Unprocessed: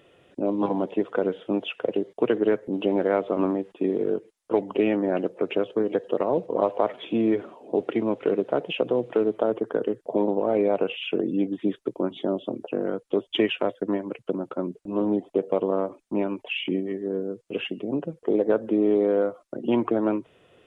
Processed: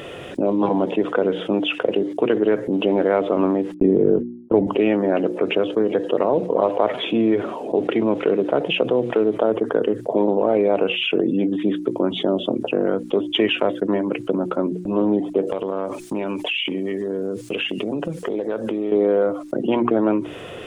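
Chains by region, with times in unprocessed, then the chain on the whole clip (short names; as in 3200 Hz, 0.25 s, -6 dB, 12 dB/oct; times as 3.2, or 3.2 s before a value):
3.74–4.67 gate -40 dBFS, range -55 dB + tilt -4 dB/oct
15.47–18.92 high shelf 2300 Hz +11.5 dB + compressor 5:1, threshold -33 dBFS
whole clip: notches 60/120/180/240/300/360 Hz; fast leveller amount 50%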